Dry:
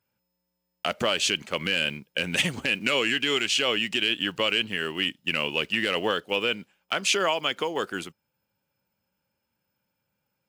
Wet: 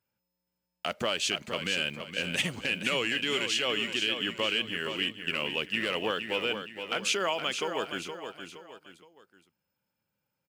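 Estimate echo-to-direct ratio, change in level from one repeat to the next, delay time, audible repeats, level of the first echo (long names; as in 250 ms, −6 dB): −7.5 dB, −8.0 dB, 468 ms, 3, −8.0 dB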